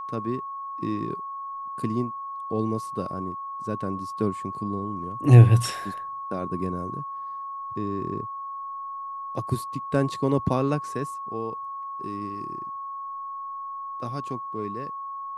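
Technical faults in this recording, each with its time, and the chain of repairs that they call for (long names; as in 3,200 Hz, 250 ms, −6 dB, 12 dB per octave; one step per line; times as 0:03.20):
whistle 1,100 Hz −32 dBFS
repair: notch filter 1,100 Hz, Q 30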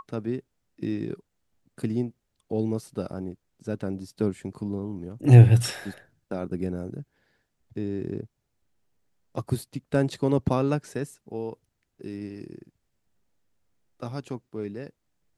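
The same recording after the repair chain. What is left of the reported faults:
none of them is left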